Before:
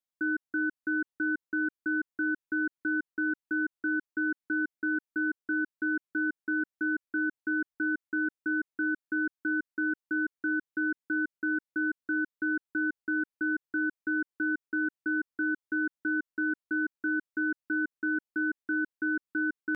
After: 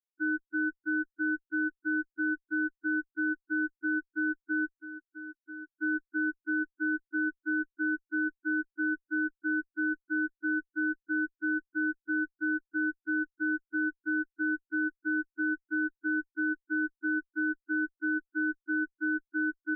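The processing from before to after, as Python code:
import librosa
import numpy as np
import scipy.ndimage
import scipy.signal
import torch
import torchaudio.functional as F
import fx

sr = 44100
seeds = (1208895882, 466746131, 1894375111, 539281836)

y = fx.clip_hard(x, sr, threshold_db=-39.0, at=(4.75, 5.7))
y = fx.cheby_harmonics(y, sr, harmonics=(2,), levels_db=(-18,), full_scale_db=-22.0)
y = fx.spec_topn(y, sr, count=4)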